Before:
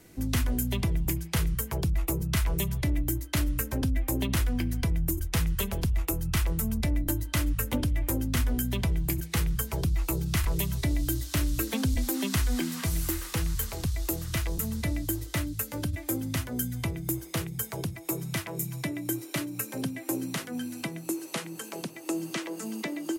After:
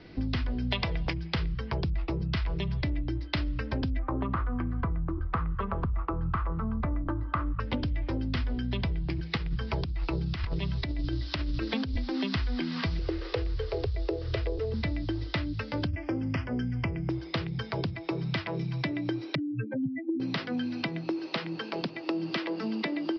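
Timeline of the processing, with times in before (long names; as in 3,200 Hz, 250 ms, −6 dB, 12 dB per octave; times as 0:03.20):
0:00.71–0:01.13: gain on a spectral selection 450–10,000 Hz +11 dB
0:03.99–0:07.60: low-pass with resonance 1,200 Hz, resonance Q 6.2
0:09.37–0:11.97: compressor whose output falls as the input rises −28 dBFS, ratio −0.5
0:12.99–0:14.74: drawn EQ curve 120 Hz 0 dB, 190 Hz −24 dB, 420 Hz +15 dB, 920 Hz −4 dB
0:15.87–0:17.10: Butterworth band-reject 3,900 Hz, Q 1.7
0:19.35–0:20.20: expanding power law on the bin magnitudes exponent 3.3
whole clip: Butterworth low-pass 5,200 Hz 96 dB per octave; downward compressor 5 to 1, threshold −33 dBFS; level +5.5 dB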